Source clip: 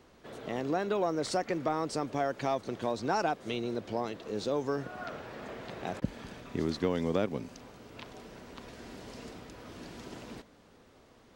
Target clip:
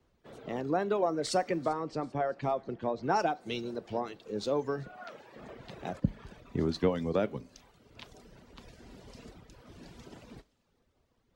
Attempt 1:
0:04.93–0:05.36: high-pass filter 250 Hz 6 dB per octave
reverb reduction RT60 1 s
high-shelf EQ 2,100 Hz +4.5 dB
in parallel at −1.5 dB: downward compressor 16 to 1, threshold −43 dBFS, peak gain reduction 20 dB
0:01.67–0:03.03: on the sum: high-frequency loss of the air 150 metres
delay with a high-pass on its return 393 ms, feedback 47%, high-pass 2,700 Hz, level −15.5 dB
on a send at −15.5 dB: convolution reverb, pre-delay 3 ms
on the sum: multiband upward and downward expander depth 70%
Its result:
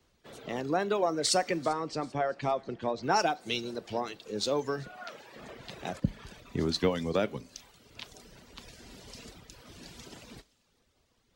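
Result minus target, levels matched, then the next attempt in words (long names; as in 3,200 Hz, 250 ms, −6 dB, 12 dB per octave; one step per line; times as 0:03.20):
4,000 Hz band +7.0 dB
0:04.93–0:05.36: high-pass filter 250 Hz 6 dB per octave
reverb reduction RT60 1 s
high-shelf EQ 2,100 Hz −6.5 dB
in parallel at −1.5 dB: downward compressor 16 to 1, threshold −43 dBFS, peak gain reduction 19.5 dB
0:01.67–0:03.03: on the sum: high-frequency loss of the air 150 metres
delay with a high-pass on its return 393 ms, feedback 47%, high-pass 2,700 Hz, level −15.5 dB
on a send at −15.5 dB: convolution reverb, pre-delay 3 ms
on the sum: multiband upward and downward expander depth 70%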